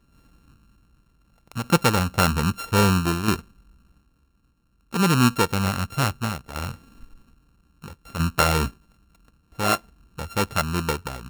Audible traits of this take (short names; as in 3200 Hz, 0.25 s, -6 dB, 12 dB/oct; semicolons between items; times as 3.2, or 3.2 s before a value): a buzz of ramps at a fixed pitch in blocks of 32 samples; tremolo saw down 0.61 Hz, depth 55%